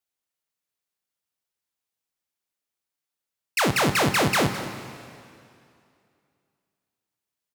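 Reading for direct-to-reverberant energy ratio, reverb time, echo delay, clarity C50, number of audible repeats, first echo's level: 8.0 dB, 2.4 s, 0.21 s, 9.0 dB, 1, -15.5 dB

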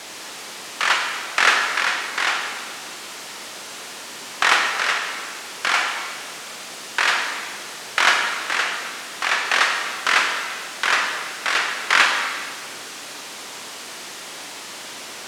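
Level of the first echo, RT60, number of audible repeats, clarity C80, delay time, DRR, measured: none, 1.7 s, none, 5.0 dB, none, 2.5 dB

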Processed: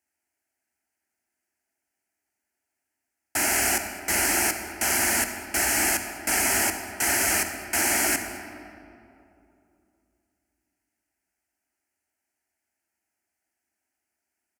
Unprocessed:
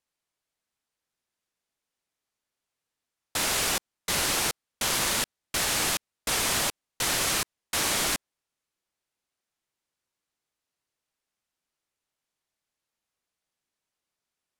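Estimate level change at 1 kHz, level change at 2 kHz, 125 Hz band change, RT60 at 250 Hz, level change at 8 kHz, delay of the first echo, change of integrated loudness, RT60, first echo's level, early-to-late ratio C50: +3.0 dB, +5.5 dB, -1.0 dB, 3.2 s, +4.0 dB, 0.212 s, +3.5 dB, 2.7 s, -20.5 dB, 7.0 dB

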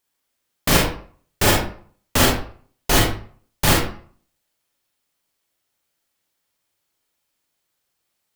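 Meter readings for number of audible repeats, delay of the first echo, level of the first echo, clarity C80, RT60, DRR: none, none, none, 7.5 dB, 0.50 s, -1.5 dB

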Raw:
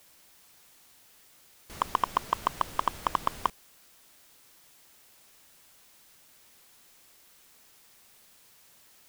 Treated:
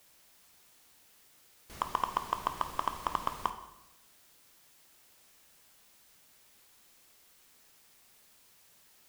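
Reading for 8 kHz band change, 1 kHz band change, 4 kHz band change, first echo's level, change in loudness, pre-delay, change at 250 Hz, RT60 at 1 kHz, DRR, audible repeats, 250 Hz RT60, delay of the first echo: -4.0 dB, -4.0 dB, -4.0 dB, none, -4.0 dB, 9 ms, -3.5 dB, 0.90 s, 7.5 dB, none, 1.0 s, none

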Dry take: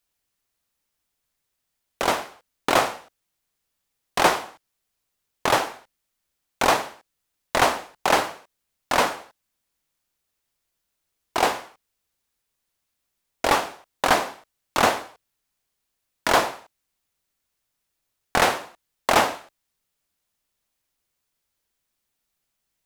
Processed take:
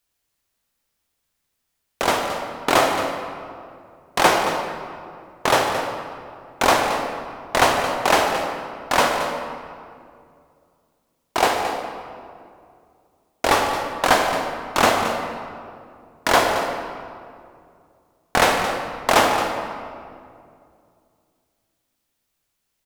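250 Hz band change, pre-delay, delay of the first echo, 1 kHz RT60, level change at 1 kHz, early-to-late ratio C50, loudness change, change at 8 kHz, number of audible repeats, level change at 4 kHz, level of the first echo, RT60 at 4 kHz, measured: +4.5 dB, 27 ms, 0.222 s, 2.2 s, +4.0 dB, 3.5 dB, +2.5 dB, +3.0 dB, 1, +3.5 dB, -12.0 dB, 1.4 s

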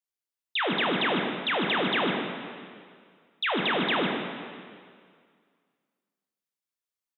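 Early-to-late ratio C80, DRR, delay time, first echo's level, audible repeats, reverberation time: 2.5 dB, 0.5 dB, 0.149 s, -9.0 dB, 1, 2.0 s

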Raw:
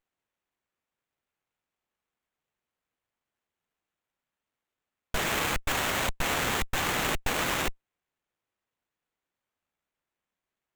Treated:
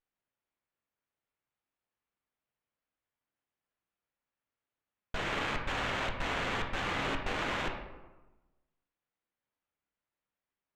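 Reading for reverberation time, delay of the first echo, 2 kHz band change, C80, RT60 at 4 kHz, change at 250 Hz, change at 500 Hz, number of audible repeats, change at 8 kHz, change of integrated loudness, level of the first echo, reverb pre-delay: 1.1 s, none, -4.5 dB, 8.0 dB, 0.65 s, -4.0 dB, -4.0 dB, none, -17.0 dB, -5.5 dB, none, 8 ms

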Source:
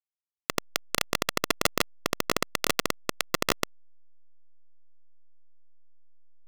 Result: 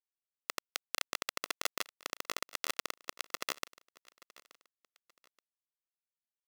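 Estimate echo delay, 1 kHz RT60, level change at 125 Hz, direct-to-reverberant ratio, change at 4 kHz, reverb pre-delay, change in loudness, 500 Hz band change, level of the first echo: 0.877 s, none, -25.0 dB, none, -8.5 dB, none, -9.5 dB, -15.0 dB, -21.5 dB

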